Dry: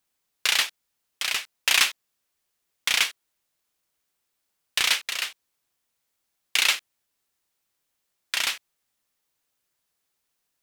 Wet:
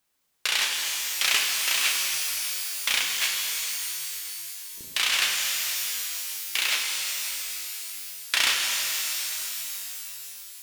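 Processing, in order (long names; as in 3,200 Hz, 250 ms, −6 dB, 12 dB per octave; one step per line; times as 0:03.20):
compressor whose output falls as the input rises −25 dBFS, ratio −1
0:03.02–0:05.16: multiband delay without the direct sound lows, highs 190 ms, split 360 Hz
reverb with rising layers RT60 3.8 s, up +12 semitones, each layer −2 dB, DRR 0 dB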